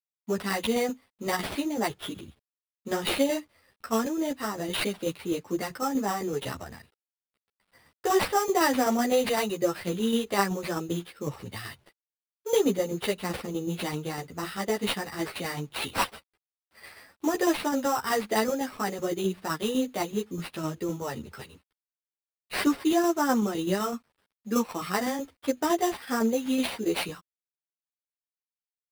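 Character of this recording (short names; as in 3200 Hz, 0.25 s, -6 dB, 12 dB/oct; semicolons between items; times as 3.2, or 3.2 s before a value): aliases and images of a low sample rate 6700 Hz, jitter 0%; tremolo saw down 7.9 Hz, depth 50%; a quantiser's noise floor 12-bit, dither none; a shimmering, thickened sound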